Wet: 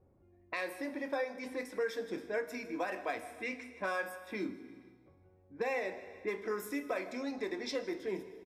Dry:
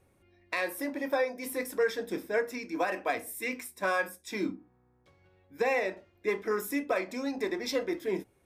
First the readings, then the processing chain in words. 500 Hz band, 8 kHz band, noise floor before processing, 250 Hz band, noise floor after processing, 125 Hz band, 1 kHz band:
-6.0 dB, -10.0 dB, -68 dBFS, -5.5 dB, -65 dBFS, -5.5 dB, -6.5 dB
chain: low-pass opened by the level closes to 760 Hz, open at -27.5 dBFS; on a send: feedback echo 0.155 s, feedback 46%, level -21 dB; on the sum: plate-style reverb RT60 1.3 s, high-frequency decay 1×, DRR 12 dB; compressor 1.5:1, threshold -44 dBFS, peak gain reduction 8 dB

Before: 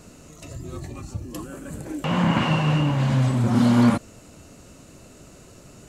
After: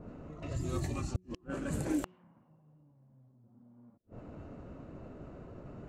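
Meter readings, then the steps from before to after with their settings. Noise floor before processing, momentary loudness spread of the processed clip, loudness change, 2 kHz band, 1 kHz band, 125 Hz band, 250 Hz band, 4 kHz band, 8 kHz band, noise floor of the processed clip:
-48 dBFS, 15 LU, -19.0 dB, -18.5 dB, -20.5 dB, -18.0 dB, -17.5 dB, -22.0 dB, -9.5 dB, -66 dBFS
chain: flipped gate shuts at -21 dBFS, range -42 dB; low-pass opened by the level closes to 590 Hz, open at -30 dBFS; de-hum 183.3 Hz, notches 2

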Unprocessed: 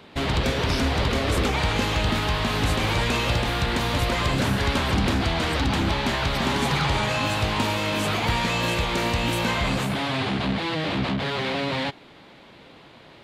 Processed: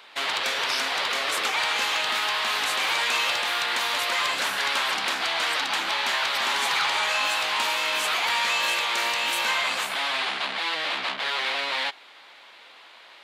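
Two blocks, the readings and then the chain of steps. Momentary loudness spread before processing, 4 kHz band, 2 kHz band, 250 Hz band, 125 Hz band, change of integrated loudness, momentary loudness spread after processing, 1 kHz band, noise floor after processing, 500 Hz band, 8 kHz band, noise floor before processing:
3 LU, +3.5 dB, +3.0 dB, -20.0 dB, under -30 dB, 0.0 dB, 4 LU, 0.0 dB, -49 dBFS, -7.5 dB, +3.5 dB, -49 dBFS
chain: HPF 1000 Hz 12 dB/oct; in parallel at -6 dB: hard clip -23 dBFS, distortion -18 dB

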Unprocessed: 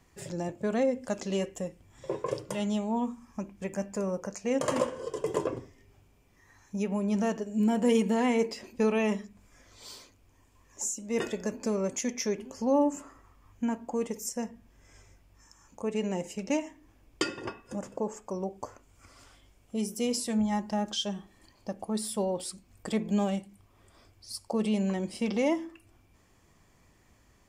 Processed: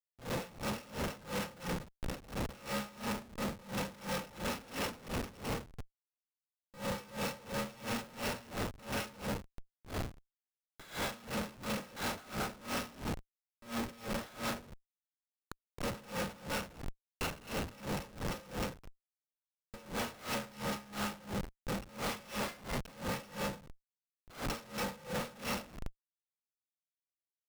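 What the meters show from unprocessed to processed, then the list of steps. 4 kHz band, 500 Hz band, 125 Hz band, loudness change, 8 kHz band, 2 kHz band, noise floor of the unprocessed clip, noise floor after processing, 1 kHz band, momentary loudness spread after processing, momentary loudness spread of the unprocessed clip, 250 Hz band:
-2.5 dB, -11.0 dB, -3.5 dB, -8.5 dB, -7.5 dB, +0.5 dB, -63 dBFS, under -85 dBFS, -4.0 dB, 8 LU, 14 LU, -12.0 dB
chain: FFT order left unsorted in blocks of 128 samples; bell 260 Hz +9 dB 0.6 oct; in parallel at 0 dB: limiter -20.5 dBFS, peak gain reduction 9 dB; on the sum: compressor 16:1, threshold -30 dBFS, peak gain reduction 15 dB; three-band isolator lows -15 dB, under 320 Hz, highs -19 dB, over 5000 Hz; on a send: feedback echo 0.208 s, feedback 37%, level -5.5 dB; on the sum: Schroeder reverb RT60 0.85 s, combs from 30 ms, DRR -1.5 dB; Schmitt trigger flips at -39 dBFS; dB-linear tremolo 2.9 Hz, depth 22 dB; gain +8.5 dB

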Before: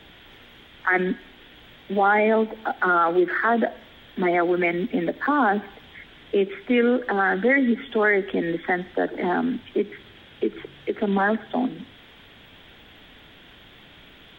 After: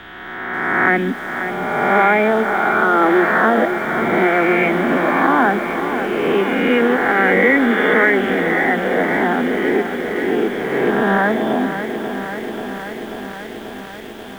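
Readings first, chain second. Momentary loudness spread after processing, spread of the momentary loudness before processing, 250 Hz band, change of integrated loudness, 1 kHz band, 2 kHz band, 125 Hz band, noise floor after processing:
15 LU, 10 LU, +6.5 dB, +6.5 dB, +7.5 dB, +9.0 dB, +7.5 dB, -32 dBFS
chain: spectral swells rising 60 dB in 1.95 s; lo-fi delay 0.537 s, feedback 80%, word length 7-bit, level -9 dB; gain +2 dB

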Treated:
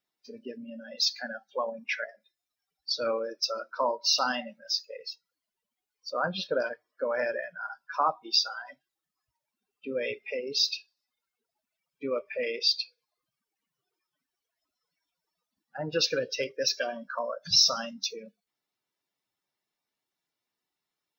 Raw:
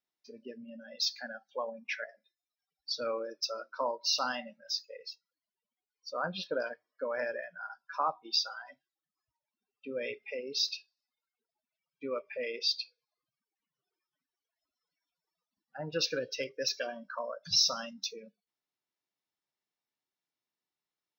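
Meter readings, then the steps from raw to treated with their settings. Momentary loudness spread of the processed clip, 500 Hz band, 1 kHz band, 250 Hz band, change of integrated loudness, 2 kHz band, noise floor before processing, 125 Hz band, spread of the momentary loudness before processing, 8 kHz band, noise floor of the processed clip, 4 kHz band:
17 LU, +5.0 dB, +5.0 dB, +5.0 dB, +5.0 dB, +5.0 dB, under -85 dBFS, +4.5 dB, 17 LU, +4.5 dB, under -85 dBFS, +5.0 dB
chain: bin magnitudes rounded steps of 15 dB; gain +5.5 dB

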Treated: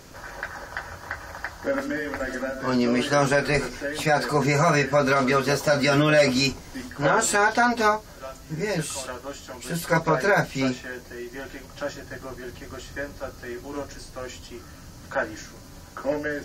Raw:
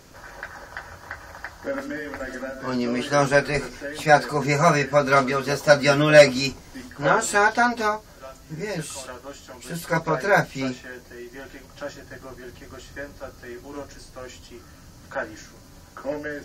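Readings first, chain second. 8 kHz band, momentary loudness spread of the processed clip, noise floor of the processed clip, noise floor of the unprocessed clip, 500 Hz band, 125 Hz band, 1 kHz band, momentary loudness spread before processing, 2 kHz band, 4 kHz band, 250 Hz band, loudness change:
+1.5 dB, 18 LU, -44 dBFS, -47 dBFS, -2.5 dB, +0.5 dB, -1.5 dB, 22 LU, -1.0 dB, 0.0 dB, +1.5 dB, -2.0 dB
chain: limiter -13.5 dBFS, peak gain reduction 10.5 dB; gain +3 dB

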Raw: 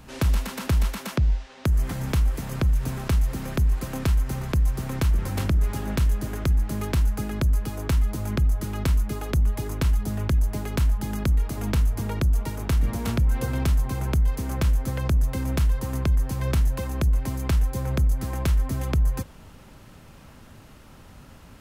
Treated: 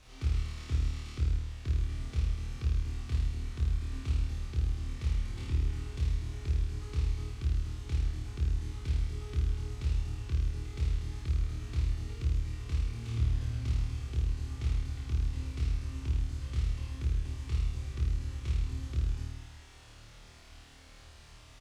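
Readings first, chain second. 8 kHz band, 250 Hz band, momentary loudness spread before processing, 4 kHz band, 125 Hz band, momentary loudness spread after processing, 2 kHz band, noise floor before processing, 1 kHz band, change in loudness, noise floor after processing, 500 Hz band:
-14.0 dB, -16.0 dB, 2 LU, -9.5 dB, -8.0 dB, 6 LU, -13.5 dB, -48 dBFS, -18.0 dB, -9.0 dB, -53 dBFS, -17.0 dB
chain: passive tone stack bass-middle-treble 6-0-2; notch 1600 Hz, Q 6.7; comb 2.6 ms, depth 67%; in parallel at -5 dB: requantised 8-bit, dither triangular; on the sum: air absorption 93 m; on a send: flutter echo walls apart 4.5 m, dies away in 1.2 s; on the sum: Doppler distortion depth 0.38 ms; gain -4 dB

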